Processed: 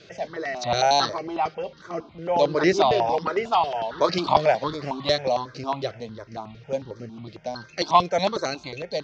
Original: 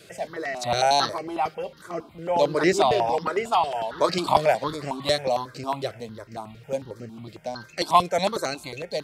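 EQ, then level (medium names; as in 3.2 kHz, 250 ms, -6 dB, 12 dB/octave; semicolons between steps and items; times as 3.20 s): Chebyshev low-pass 6.2 kHz, order 5; +1.0 dB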